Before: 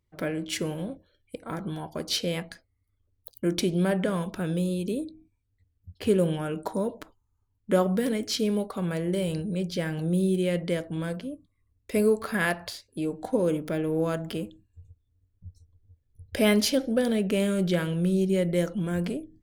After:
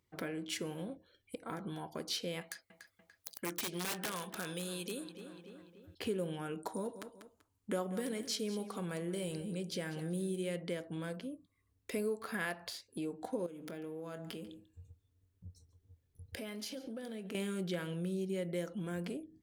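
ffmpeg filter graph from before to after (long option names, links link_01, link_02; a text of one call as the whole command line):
ffmpeg -i in.wav -filter_complex "[0:a]asettb=1/sr,asplit=3[link_01][link_02][link_03];[link_01]atrim=end=2.414[link_04];[link_02]atrim=start=2.41:end=5.95,asetpts=PTS-STARTPTS,afade=type=in:duration=0.004:curve=qsin,afade=type=out:start_time=3.536:duration=0.004:curve=qsin,tiltshelf=frequency=770:gain=-7.5,aeval=exprs='(mod(12.6*val(0)+1,2)-1)/12.6':channel_layout=same,asplit=2[link_05][link_06];[link_06]adelay=290,lowpass=frequency=3400:poles=1,volume=-15dB,asplit=2[link_07][link_08];[link_08]adelay=290,lowpass=frequency=3400:poles=1,volume=0.52,asplit=2[link_09][link_10];[link_10]adelay=290,lowpass=frequency=3400:poles=1,volume=0.52,asplit=2[link_11][link_12];[link_12]adelay=290,lowpass=frequency=3400:poles=1,volume=0.52,asplit=2[link_13][link_14];[link_14]adelay=290,lowpass=frequency=3400:poles=1,volume=0.52[link_15];[link_05][link_07][link_09][link_11][link_13][link_15]amix=inputs=6:normalize=0,atrim=end_sample=156114[link_16];[link_03]atrim=start=5.946[link_17];[link_04][link_16]acrossfade=duration=0.004:curve1=hsin:curve2=qsin[link_18];[link_18][link_17]acrossfade=duration=0.004:curve1=qsin:curve2=hsin,asettb=1/sr,asplit=3[link_19][link_20][link_21];[link_19]atrim=end=6.594[link_22];[link_20]atrim=start=6.59:end=10.56,asetpts=PTS-STARTPTS,afade=type=in:duration=0.004:curve=qsin,afade=type=out:start_time=3.966:duration=0.004:curve=qsin,equalizer=frequency=8700:width_type=o:width=0.88:gain=5.5,aecho=1:1:193|386:0.178|0.0373,atrim=end_sample=175077[link_23];[link_21]atrim=start=10.556[link_24];[link_22][link_23]acrossfade=duration=0.004:curve1=hsin:curve2=qsin[link_25];[link_25][link_24]acrossfade=duration=0.004:curve1=qsin:curve2=hsin,asettb=1/sr,asplit=3[link_26][link_27][link_28];[link_26]atrim=end=13.464[link_29];[link_27]atrim=start=13.46:end=17.35,asetpts=PTS-STARTPTS,afade=type=in:duration=0.004:curve=qsin,afade=type=out:start_time=3.886:duration=0.004:curve=qsin,acompressor=threshold=-37dB:ratio=5:attack=3.2:release=140:knee=1:detection=peak,asplit=2[link_30][link_31];[link_31]adelay=23,volume=-13.5dB[link_32];[link_30][link_32]amix=inputs=2:normalize=0,atrim=end_sample=171549,aecho=1:1:142:0.112,atrim=end_sample=171549[link_33];[link_28]atrim=start=17.346[link_34];[link_29][link_33]acrossfade=duration=0.004:curve1=hsin:curve2=qsin[link_35];[link_35][link_34]acrossfade=duration=0.004:curve1=qsin:curve2=hsin,highpass=frequency=210:poles=1,bandreject=frequency=600:width=12,acompressor=threshold=-48dB:ratio=2,volume=2.5dB" out.wav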